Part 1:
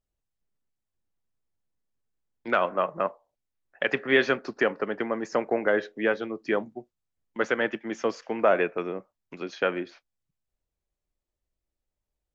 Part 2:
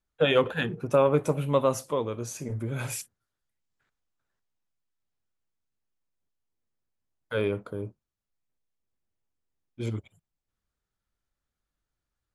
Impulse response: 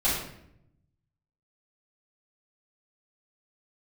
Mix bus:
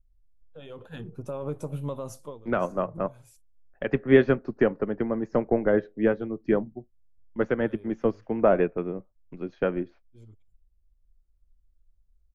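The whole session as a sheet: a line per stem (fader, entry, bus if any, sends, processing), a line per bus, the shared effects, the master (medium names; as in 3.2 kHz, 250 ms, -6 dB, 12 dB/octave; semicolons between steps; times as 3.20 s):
-0.5 dB, 0.00 s, no send, tilt EQ -4.5 dB/octave
+0.5 dB, 0.35 s, no send, peaking EQ 2.1 kHz -8.5 dB 1.2 oct; peak limiter -18.5 dBFS, peak gain reduction 7.5 dB; auto duck -14 dB, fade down 0.20 s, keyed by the first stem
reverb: none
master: bass shelf 88 Hz +12 dB; upward expansion 1.5:1, over -30 dBFS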